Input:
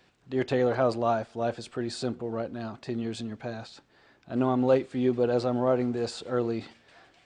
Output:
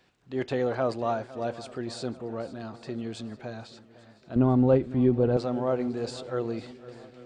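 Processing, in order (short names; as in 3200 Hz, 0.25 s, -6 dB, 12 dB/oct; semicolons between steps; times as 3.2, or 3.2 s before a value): 4.36–5.37 RIAA curve playback; swung echo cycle 0.841 s, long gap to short 1.5:1, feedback 39%, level -18 dB; gain -2.5 dB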